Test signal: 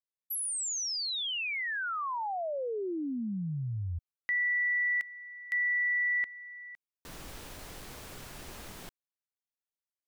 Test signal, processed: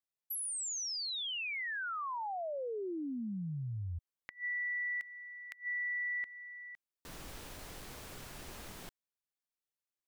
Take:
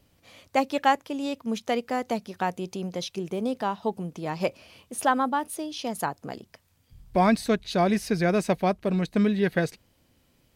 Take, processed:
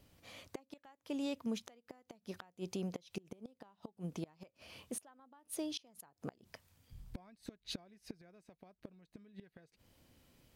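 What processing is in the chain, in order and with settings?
downward compressor 2.5 to 1, threshold −35 dBFS
gate with flip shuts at −27 dBFS, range −26 dB
level −2.5 dB

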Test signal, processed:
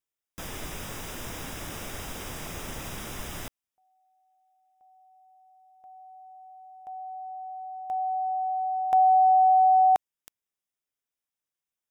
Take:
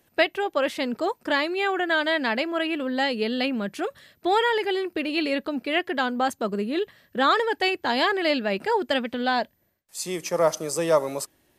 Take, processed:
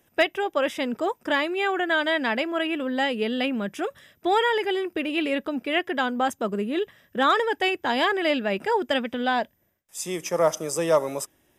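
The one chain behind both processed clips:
hard clipping −11 dBFS
Butterworth band-reject 4,300 Hz, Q 5.3

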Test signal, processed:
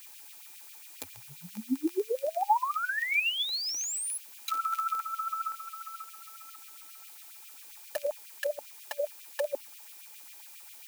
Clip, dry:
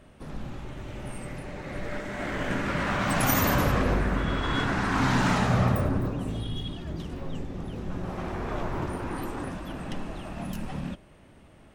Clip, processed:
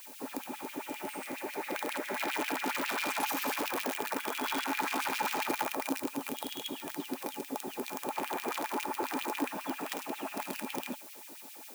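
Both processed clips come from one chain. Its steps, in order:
downward compressor 6 to 1, threshold −31 dBFS
background noise blue −48 dBFS
wrap-around overflow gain 26.5 dB
auto-filter high-pass sine 7.4 Hz 350–2,900 Hz
hollow resonant body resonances 260/860/2,400 Hz, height 12 dB, ringing for 45 ms
level −2 dB

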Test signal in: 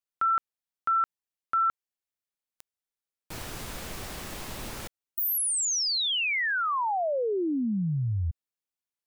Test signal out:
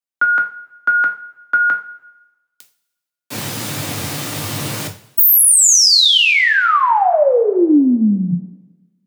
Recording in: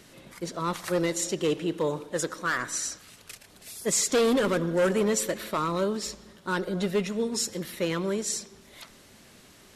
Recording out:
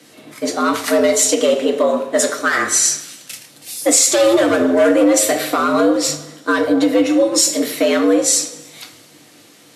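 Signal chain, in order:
frequency shifter +94 Hz
coupled-rooms reverb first 0.32 s, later 1.6 s, from −18 dB, DRR 3 dB
downward compressor 2.5 to 1, threshold −25 dBFS
boost into a limiter +18 dB
multiband upward and downward expander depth 40%
level −4 dB

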